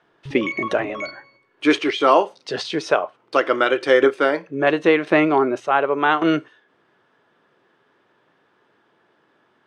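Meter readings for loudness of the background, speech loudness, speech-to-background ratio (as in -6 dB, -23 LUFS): -30.0 LUFS, -19.5 LUFS, 10.5 dB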